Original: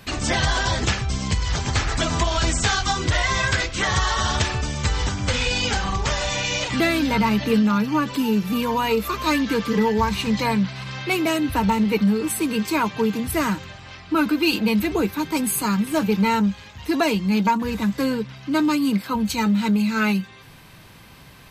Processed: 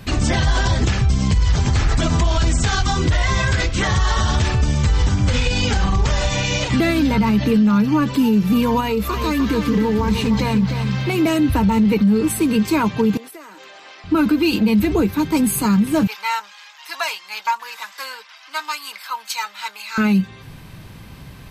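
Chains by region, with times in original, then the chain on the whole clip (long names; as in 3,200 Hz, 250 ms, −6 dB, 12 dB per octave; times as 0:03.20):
0:08.80–0:11.18: downward compressor, threshold −21 dBFS + feedback echo at a low word length 304 ms, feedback 35%, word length 9 bits, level −8 dB
0:13.17–0:14.04: high-pass filter 380 Hz 24 dB per octave + downward compressor 16 to 1, threshold −38 dBFS
0:16.07–0:19.98: high-pass filter 900 Hz 24 dB per octave + parametric band 5,200 Hz +4 dB 0.25 octaves
whole clip: low-shelf EQ 320 Hz +10 dB; brickwall limiter −10.5 dBFS; level +1.5 dB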